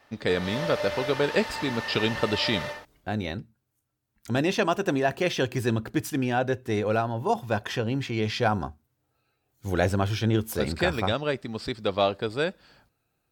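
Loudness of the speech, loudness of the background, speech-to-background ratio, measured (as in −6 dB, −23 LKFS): −27.0 LKFS, −33.5 LKFS, 6.5 dB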